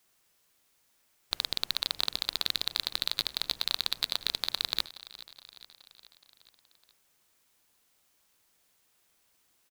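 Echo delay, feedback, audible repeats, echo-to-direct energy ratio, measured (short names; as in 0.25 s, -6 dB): 0.421 s, 59%, 4, -15.5 dB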